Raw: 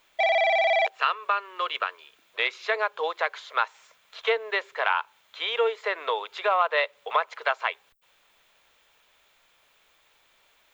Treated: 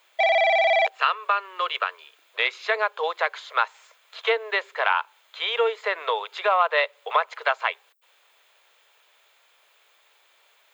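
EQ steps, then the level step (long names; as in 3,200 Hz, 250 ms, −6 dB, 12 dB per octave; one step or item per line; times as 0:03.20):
high-pass filter 390 Hz 24 dB per octave
notch filter 5,700 Hz, Q 17
+2.5 dB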